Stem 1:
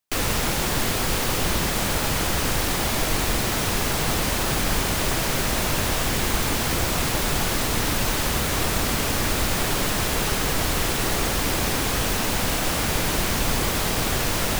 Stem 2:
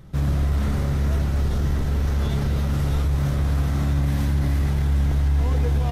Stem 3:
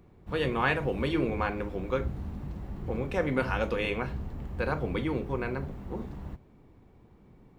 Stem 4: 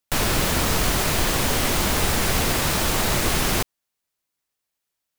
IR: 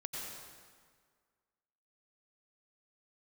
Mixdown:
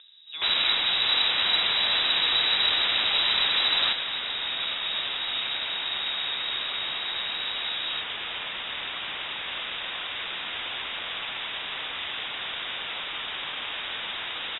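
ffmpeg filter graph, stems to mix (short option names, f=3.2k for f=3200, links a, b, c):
-filter_complex "[0:a]highpass=f=330:p=1,adelay=950,volume=-5.5dB[a];[1:a]highpass=130,adelay=2100,volume=-7dB[b];[2:a]acompressor=mode=upward:threshold=-36dB:ratio=2.5,volume=-7.5dB[c];[3:a]adelay=300,volume=-2.5dB[d];[a][b][c][d]amix=inputs=4:normalize=0,lowpass=f=3.3k:t=q:w=0.5098,lowpass=f=3.3k:t=q:w=0.6013,lowpass=f=3.3k:t=q:w=0.9,lowpass=f=3.3k:t=q:w=2.563,afreqshift=-3900"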